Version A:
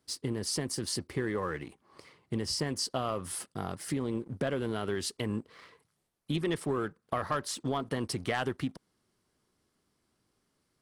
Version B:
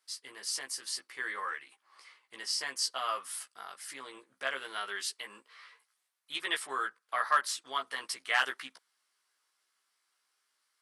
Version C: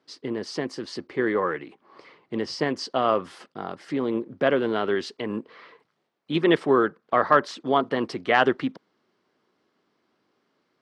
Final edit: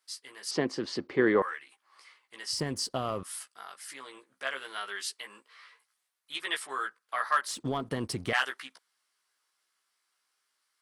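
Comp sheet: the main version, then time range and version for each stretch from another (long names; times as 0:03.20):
B
0:00.51–0:01.42: punch in from C
0:02.53–0:03.23: punch in from A
0:07.47–0:08.33: punch in from A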